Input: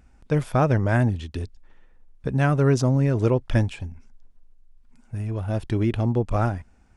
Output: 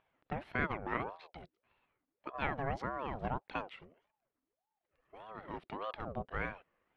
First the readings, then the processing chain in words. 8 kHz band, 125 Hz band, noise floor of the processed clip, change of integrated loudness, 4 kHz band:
below −30 dB, −25.5 dB, below −85 dBFS, −16.5 dB, −12.0 dB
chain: high-pass filter 1,100 Hz 6 dB per octave
high-frequency loss of the air 450 metres
ring modulator whose carrier an LFO sweeps 570 Hz, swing 55%, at 1.7 Hz
level −2 dB

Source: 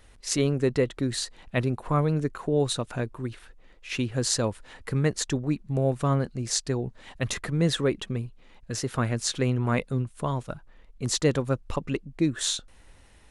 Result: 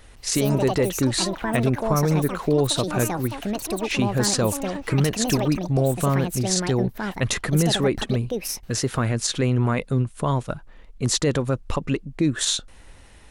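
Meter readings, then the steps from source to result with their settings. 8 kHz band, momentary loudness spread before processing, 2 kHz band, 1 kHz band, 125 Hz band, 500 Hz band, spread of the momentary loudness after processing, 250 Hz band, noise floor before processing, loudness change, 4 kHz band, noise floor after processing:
+5.5 dB, 9 LU, +5.0 dB, +6.0 dB, +4.5 dB, +4.5 dB, 6 LU, +5.5 dB, −54 dBFS, +5.0 dB, +5.5 dB, −46 dBFS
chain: brickwall limiter −18 dBFS, peak gain reduction 9.5 dB
delay with pitch and tempo change per echo 168 ms, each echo +7 semitones, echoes 2, each echo −6 dB
de-essing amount 40%
level +6.5 dB

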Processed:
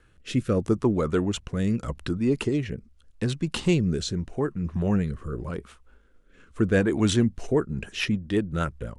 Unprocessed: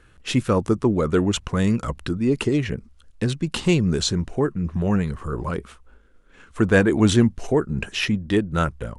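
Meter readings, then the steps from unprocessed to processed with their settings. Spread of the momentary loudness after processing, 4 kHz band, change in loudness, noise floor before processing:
9 LU, −5.5 dB, −4.0 dB, −53 dBFS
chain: rotating-speaker cabinet horn 0.8 Hz, later 8 Hz, at 0:06.92
level −2.5 dB

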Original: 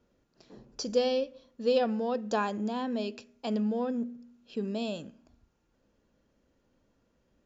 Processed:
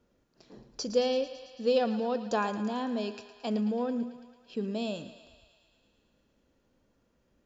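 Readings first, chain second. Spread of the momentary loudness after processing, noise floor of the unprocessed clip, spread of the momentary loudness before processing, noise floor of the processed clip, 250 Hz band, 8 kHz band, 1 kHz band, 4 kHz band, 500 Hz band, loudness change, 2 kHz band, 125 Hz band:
13 LU, −73 dBFS, 13 LU, −72 dBFS, 0.0 dB, can't be measured, +0.5 dB, +0.5 dB, 0.0 dB, 0.0 dB, +0.5 dB, 0.0 dB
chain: feedback echo with a high-pass in the loop 111 ms, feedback 75%, high-pass 460 Hz, level −13 dB

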